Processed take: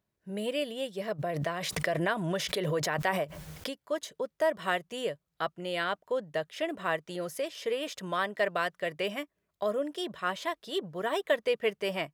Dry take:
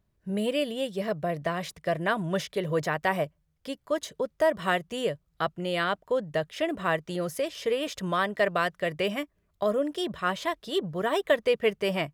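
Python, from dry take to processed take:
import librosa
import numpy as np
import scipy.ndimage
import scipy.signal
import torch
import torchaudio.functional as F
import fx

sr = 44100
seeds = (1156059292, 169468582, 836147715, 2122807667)

y = fx.highpass(x, sr, hz=280.0, slope=6)
y = fx.notch(y, sr, hz=1200.0, q=25.0)
y = fx.pre_swell(y, sr, db_per_s=29.0, at=(1.18, 3.69), fade=0.02)
y = F.gain(torch.from_numpy(y), -3.0).numpy()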